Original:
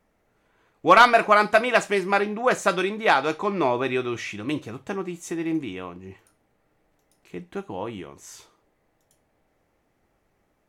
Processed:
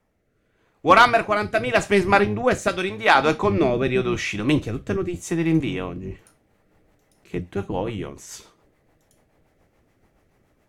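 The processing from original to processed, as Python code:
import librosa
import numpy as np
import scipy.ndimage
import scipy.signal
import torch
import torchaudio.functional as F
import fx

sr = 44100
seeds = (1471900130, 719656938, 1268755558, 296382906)

y = fx.octave_divider(x, sr, octaves=1, level_db=-3.0)
y = fx.low_shelf(y, sr, hz=420.0, db=-9.5, at=(2.68, 3.15))
y = fx.rider(y, sr, range_db=3, speed_s=0.5)
y = fx.rotary_switch(y, sr, hz=0.85, then_hz=7.0, switch_at_s=5.95)
y = F.gain(torch.from_numpy(y), 4.5).numpy()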